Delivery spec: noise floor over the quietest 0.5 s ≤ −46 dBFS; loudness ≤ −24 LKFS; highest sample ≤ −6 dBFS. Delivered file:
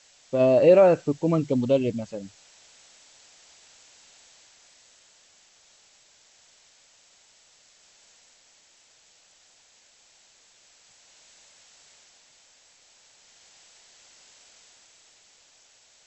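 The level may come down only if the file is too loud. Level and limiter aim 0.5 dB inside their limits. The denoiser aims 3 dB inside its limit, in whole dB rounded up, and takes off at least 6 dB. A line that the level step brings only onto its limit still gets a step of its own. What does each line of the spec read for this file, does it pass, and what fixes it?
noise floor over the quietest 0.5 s −59 dBFS: in spec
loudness −21.5 LKFS: out of spec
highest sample −6.5 dBFS: in spec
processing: level −3 dB

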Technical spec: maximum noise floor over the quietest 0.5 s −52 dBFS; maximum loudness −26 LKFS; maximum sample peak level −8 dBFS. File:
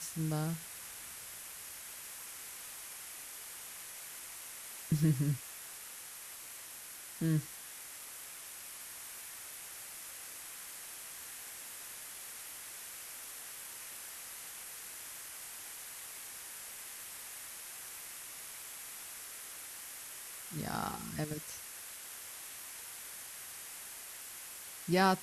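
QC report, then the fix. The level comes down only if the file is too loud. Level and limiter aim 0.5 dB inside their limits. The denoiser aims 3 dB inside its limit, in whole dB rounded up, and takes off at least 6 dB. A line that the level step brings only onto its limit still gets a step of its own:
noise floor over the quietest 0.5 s −49 dBFS: out of spec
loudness −41.5 LKFS: in spec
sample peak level −17.5 dBFS: in spec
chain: broadband denoise 6 dB, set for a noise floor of −49 dBFS

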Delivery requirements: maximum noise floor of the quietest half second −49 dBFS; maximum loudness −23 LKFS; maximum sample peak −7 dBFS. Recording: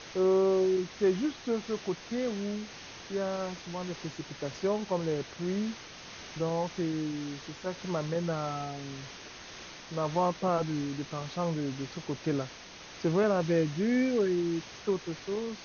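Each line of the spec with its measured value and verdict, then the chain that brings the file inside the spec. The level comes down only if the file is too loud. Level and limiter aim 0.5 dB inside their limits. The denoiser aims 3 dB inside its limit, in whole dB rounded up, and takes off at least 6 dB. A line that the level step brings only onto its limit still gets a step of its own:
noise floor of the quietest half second −48 dBFS: out of spec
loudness −31.5 LKFS: in spec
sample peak −15.5 dBFS: in spec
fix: broadband denoise 6 dB, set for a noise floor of −48 dBFS

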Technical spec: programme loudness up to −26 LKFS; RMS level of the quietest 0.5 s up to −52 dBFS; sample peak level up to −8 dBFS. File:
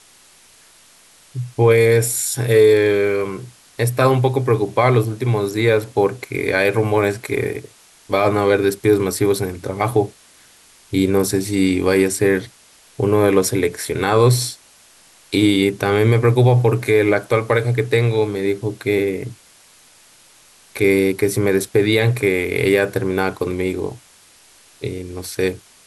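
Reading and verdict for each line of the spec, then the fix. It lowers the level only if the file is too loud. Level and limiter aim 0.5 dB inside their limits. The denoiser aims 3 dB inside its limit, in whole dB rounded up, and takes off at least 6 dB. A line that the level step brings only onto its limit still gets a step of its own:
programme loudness −17.5 LKFS: out of spec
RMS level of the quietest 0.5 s −50 dBFS: out of spec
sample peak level −4.0 dBFS: out of spec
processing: level −9 dB

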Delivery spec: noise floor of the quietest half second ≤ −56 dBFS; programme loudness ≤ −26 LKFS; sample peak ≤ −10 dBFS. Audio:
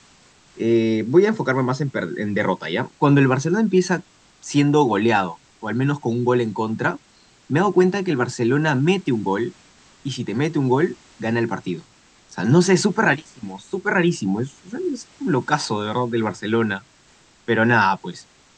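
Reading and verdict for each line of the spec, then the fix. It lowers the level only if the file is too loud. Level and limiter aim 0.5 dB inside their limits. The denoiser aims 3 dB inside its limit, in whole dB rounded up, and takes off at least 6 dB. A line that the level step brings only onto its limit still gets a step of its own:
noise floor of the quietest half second −54 dBFS: out of spec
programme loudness −20.5 LKFS: out of spec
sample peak −3.5 dBFS: out of spec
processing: level −6 dB
brickwall limiter −10.5 dBFS

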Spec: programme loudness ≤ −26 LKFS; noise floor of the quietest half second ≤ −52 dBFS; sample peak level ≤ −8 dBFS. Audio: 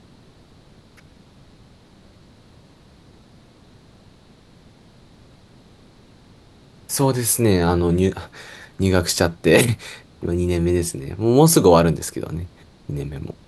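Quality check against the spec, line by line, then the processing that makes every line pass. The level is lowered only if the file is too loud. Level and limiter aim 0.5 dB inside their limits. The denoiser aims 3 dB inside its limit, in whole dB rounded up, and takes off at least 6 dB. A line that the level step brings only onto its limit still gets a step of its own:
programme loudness −19.0 LKFS: out of spec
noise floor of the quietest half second −50 dBFS: out of spec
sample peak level −1.5 dBFS: out of spec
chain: level −7.5 dB

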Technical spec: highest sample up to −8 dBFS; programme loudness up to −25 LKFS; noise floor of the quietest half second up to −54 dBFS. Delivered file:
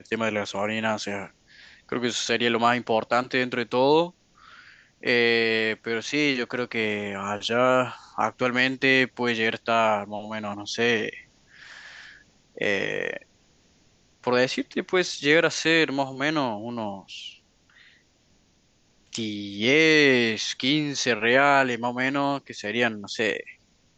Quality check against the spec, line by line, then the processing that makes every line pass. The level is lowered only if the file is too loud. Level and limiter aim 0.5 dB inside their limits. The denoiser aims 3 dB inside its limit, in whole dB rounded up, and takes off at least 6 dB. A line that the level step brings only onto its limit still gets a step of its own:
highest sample −6.0 dBFS: out of spec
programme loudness −24.0 LKFS: out of spec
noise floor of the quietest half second −63 dBFS: in spec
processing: level −1.5 dB
brickwall limiter −8.5 dBFS

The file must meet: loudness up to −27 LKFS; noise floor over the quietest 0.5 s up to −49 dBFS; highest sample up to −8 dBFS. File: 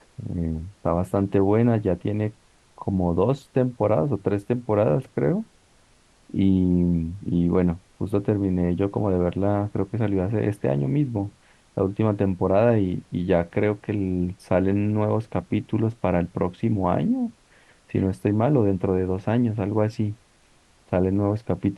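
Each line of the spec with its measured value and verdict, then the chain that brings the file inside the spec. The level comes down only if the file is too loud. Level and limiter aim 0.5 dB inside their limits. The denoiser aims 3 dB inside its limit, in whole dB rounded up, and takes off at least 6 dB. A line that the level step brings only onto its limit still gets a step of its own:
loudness −24.0 LKFS: out of spec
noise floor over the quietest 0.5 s −58 dBFS: in spec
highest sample −6.0 dBFS: out of spec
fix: level −3.5 dB

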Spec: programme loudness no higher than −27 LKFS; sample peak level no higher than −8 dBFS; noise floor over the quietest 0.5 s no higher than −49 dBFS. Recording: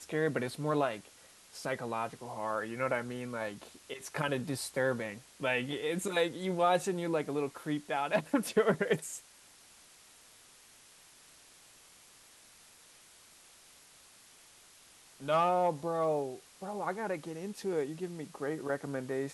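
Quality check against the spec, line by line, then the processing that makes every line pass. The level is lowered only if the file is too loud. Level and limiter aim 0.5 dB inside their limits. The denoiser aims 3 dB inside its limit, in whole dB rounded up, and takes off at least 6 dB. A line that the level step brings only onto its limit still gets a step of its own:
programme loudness −34.0 LKFS: in spec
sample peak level −15.5 dBFS: in spec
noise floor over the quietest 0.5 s −59 dBFS: in spec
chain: no processing needed

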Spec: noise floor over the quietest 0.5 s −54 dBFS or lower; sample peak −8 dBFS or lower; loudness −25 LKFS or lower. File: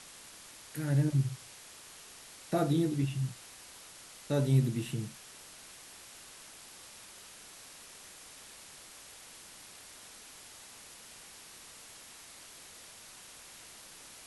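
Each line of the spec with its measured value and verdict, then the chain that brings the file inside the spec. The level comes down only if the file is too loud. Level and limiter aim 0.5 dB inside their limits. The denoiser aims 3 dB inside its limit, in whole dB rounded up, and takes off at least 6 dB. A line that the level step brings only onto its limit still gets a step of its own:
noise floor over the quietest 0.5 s −52 dBFS: out of spec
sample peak −16.0 dBFS: in spec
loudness −32.0 LKFS: in spec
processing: broadband denoise 6 dB, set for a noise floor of −52 dBFS

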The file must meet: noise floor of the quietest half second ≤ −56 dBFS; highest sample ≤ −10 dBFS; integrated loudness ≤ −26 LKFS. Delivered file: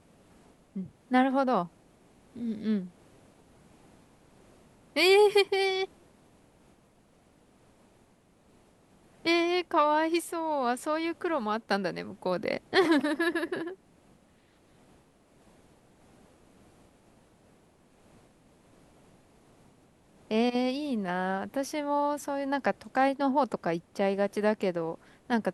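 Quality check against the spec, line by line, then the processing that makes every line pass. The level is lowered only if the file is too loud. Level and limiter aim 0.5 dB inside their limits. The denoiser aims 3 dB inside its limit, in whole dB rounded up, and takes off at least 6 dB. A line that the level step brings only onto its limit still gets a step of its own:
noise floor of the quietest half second −63 dBFS: in spec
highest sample −12.0 dBFS: in spec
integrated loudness −28.5 LKFS: in spec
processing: no processing needed

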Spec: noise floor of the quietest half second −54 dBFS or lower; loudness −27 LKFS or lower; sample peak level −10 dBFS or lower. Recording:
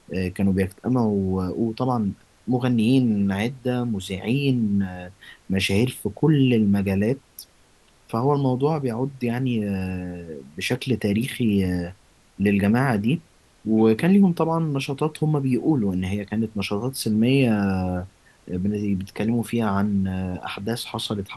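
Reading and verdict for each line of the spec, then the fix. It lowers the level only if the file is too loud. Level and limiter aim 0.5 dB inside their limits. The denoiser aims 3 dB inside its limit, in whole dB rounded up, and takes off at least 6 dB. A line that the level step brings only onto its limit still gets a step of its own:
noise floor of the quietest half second −57 dBFS: in spec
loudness −23.0 LKFS: out of spec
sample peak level −6.5 dBFS: out of spec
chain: level −4.5 dB

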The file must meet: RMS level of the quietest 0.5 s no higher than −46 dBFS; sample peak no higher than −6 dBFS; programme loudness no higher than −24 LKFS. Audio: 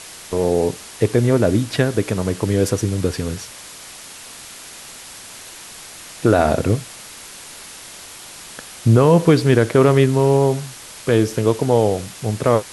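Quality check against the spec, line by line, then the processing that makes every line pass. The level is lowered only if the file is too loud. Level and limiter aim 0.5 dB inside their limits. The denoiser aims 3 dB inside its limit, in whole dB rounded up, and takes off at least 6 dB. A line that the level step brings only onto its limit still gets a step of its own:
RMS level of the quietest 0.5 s −38 dBFS: out of spec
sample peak −2.0 dBFS: out of spec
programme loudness −18.0 LKFS: out of spec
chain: broadband denoise 6 dB, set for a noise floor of −38 dBFS
level −6.5 dB

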